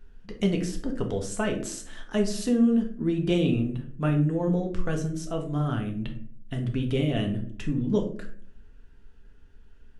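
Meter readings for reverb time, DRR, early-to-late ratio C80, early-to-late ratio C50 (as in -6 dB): 0.55 s, 2.5 dB, 14.0 dB, 9.5 dB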